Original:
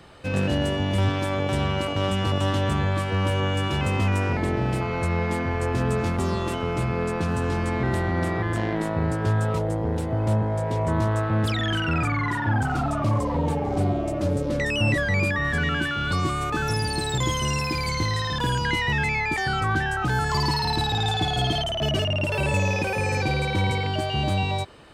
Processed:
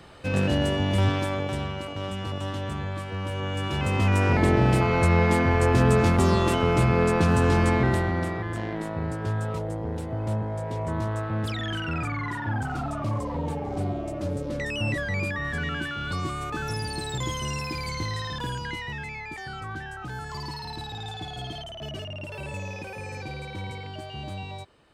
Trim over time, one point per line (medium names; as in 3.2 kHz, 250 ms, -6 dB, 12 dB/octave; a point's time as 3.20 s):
1.14 s 0 dB
1.77 s -8 dB
3.26 s -8 dB
4.44 s +4.5 dB
7.68 s +4.5 dB
8.42 s -5.5 dB
18.27 s -5.5 dB
19.05 s -12 dB